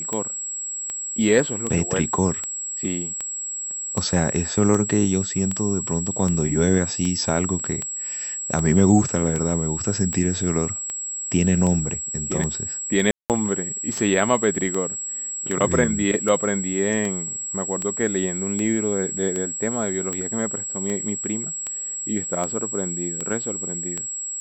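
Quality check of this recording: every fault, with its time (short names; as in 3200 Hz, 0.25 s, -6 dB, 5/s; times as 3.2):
tick 78 rpm -14 dBFS
tone 7700 Hz -27 dBFS
13.11–13.3 gap 0.188 s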